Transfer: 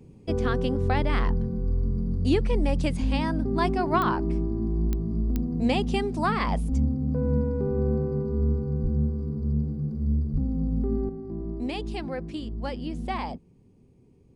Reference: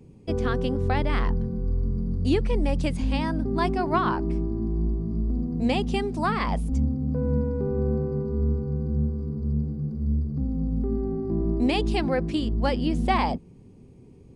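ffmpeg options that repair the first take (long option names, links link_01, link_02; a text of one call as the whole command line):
ffmpeg -i in.wav -filter_complex "[0:a]adeclick=threshold=4,asplit=3[link_01][link_02][link_03];[link_01]afade=type=out:start_time=8.82:duration=0.02[link_04];[link_02]highpass=frequency=140:width=0.5412,highpass=frequency=140:width=1.3066,afade=type=in:start_time=8.82:duration=0.02,afade=type=out:start_time=8.94:duration=0.02[link_05];[link_03]afade=type=in:start_time=8.94:duration=0.02[link_06];[link_04][link_05][link_06]amix=inputs=3:normalize=0,asplit=3[link_07][link_08][link_09];[link_07]afade=type=out:start_time=10.32:duration=0.02[link_10];[link_08]highpass=frequency=140:width=0.5412,highpass=frequency=140:width=1.3066,afade=type=in:start_time=10.32:duration=0.02,afade=type=out:start_time=10.44:duration=0.02[link_11];[link_09]afade=type=in:start_time=10.44:duration=0.02[link_12];[link_10][link_11][link_12]amix=inputs=3:normalize=0,asetnsamples=nb_out_samples=441:pad=0,asendcmd='11.09 volume volume 8dB',volume=0dB" out.wav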